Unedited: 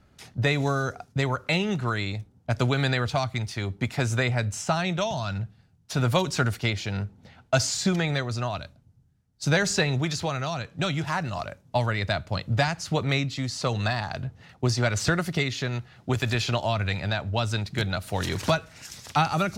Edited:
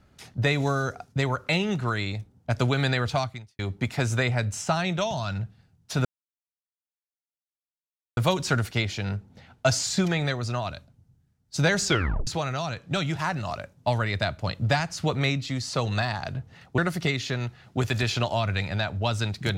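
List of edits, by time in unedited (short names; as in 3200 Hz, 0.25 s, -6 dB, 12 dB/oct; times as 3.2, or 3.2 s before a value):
3.21–3.59 fade out quadratic
6.05 insert silence 2.12 s
9.74 tape stop 0.41 s
14.66–15.1 cut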